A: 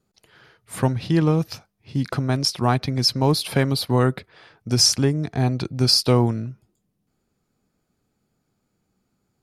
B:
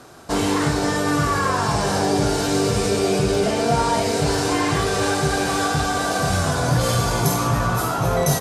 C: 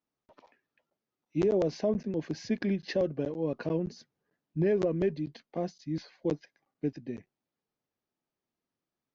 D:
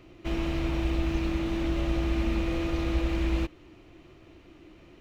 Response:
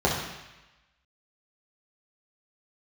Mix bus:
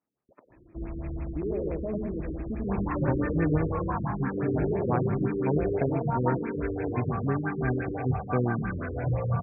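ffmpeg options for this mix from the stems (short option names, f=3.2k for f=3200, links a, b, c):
-filter_complex "[0:a]adelay=2250,volume=-9dB[a];[1:a]equalizer=f=620:w=0.78:g=-4.5,asplit=2[b][c];[c]afreqshift=0.91[d];[b][d]amix=inputs=2:normalize=1,adelay=2350,volume=-4.5dB[e];[2:a]volume=2.5dB,asplit=2[f][g];[g]volume=-10dB[h];[3:a]lowshelf=f=300:g=7,adelay=500,volume=-9dB,asplit=2[i][j];[j]volume=-9dB[k];[f][i]amix=inputs=2:normalize=0,alimiter=level_in=1dB:limit=-24dB:level=0:latency=1:release=30,volume=-1dB,volume=0dB[l];[h][k]amix=inputs=2:normalize=0,aecho=0:1:95|190|285|380|475|570:1|0.42|0.176|0.0741|0.0311|0.0131[m];[a][e][l][m]amix=inputs=4:normalize=0,highpass=41,afftfilt=real='re*lt(b*sr/1024,470*pow(2700/470,0.5+0.5*sin(2*PI*5.9*pts/sr)))':imag='im*lt(b*sr/1024,470*pow(2700/470,0.5+0.5*sin(2*PI*5.9*pts/sr)))':win_size=1024:overlap=0.75"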